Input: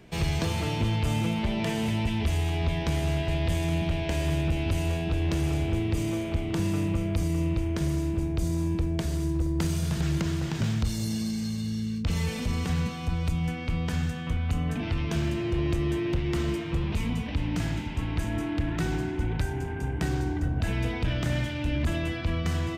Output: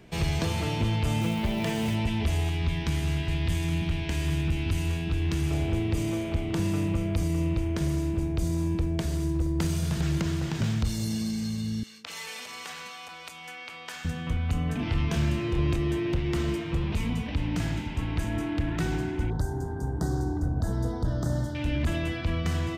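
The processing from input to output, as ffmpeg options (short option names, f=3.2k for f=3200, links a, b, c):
-filter_complex "[0:a]asettb=1/sr,asplit=3[a][b][c];[a]atrim=end=1.214[d];[b]atrim=start=1.21:end=1.95,asetpts=PTS-STARTPTS,afade=t=in:d=0.004:c=qsin,afade=t=out:st=0.736:d=0.004:c=qsin,acrusher=bits=6:mode=log:mix=0:aa=0.000001[e];[c]atrim=start=1.946[f];[d][e]acrossfade=d=0.004:c1=hsin:c2=qsin[g];[g][f]acrossfade=d=0.004:c1=qsin:c2=hsin,asettb=1/sr,asplit=3[h][i][j];[h]atrim=end=2.494[k];[i]atrim=start=2.49:end=5.51,asetpts=PTS-STARTPTS,afade=t=in:d=0.004:c=qsin,afade=t=out:st=3.016:d=0.004:c=qsin,equalizer=f=600:w=1.8:g=-12[l];[j]atrim=start=5.506[m];[k][l]acrossfade=d=0.004:c1=hsin:c2=qsin[n];[n][m]acrossfade=d=0.004:c1=qsin:c2=hsin,asettb=1/sr,asplit=3[o][p][q];[o]atrim=end=11.834[r];[p]atrim=start=11.83:end=14.05,asetpts=PTS-STARTPTS,afade=t=in:d=0.004:c=qsin,afade=t=out:st=2.216:d=0.004:c=qsin,highpass=850[s];[q]atrim=start=14.046[t];[r][s]acrossfade=d=0.004:c1=hsin:c2=qsin[u];[u][t]acrossfade=d=0.004:c1=qsin:c2=hsin,asettb=1/sr,asplit=3[v][w][x];[v]atrim=end=14.764[y];[w]atrim=start=14.76:end=15.76,asetpts=PTS-STARTPTS,afade=t=in:d=0.004:c=qsin,afade=t=out:st=0.996:d=0.004:c=qsin,asplit=2[z][aa];[aa]adelay=28,volume=-5dB[ab];[z][ab]amix=inputs=2:normalize=0,atrim=end_sample=44100[ac];[x]atrim=start=15.756[ad];[y][ac]acrossfade=d=0.004:c1=hsin:c2=qsin[ae];[ae][ad]acrossfade=d=0.004:c1=qsin:c2=hsin,asettb=1/sr,asplit=3[af][ag][ah];[af]atrim=end=19.304[ai];[ag]atrim=start=19.3:end=21.55,asetpts=PTS-STARTPTS,afade=t=in:d=0.004:c=qsin,afade=t=out:st=2.246:d=0.004:c=qsin,asuperstop=centerf=2500:order=4:qfactor=0.74[aj];[ah]atrim=start=21.546[ak];[ai][aj]acrossfade=d=0.004:c1=hsin:c2=qsin[al];[al][ak]acrossfade=d=0.004:c1=qsin:c2=hsin"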